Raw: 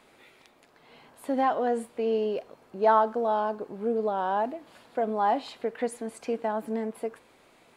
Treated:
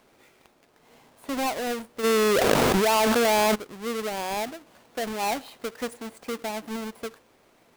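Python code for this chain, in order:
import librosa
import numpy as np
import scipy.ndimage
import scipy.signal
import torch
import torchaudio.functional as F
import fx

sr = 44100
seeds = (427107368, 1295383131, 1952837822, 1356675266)

y = fx.halfwave_hold(x, sr)
y = fx.env_flatten(y, sr, amount_pct=100, at=(2.03, 3.54), fade=0.02)
y = F.gain(torch.from_numpy(y), -6.0).numpy()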